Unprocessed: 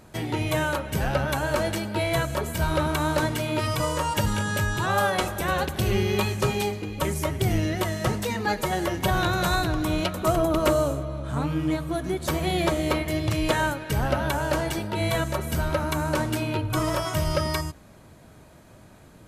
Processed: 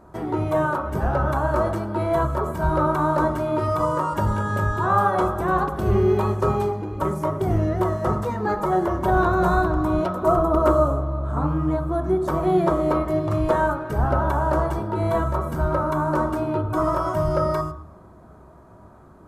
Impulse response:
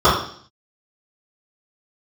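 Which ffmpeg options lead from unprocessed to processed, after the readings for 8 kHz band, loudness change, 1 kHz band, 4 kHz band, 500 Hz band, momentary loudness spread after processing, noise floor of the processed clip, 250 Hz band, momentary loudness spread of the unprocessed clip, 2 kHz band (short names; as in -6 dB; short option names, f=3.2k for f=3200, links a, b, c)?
under -10 dB, +3.0 dB, +5.5 dB, under -10 dB, +4.5 dB, 6 LU, -47 dBFS, +3.0 dB, 4 LU, -2.5 dB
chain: -filter_complex "[0:a]highshelf=f=1.8k:t=q:w=1.5:g=-12.5,asplit=2[a][b];[1:a]atrim=start_sample=2205[c];[b][c]afir=irnorm=-1:irlink=0,volume=-30.5dB[d];[a][d]amix=inputs=2:normalize=0"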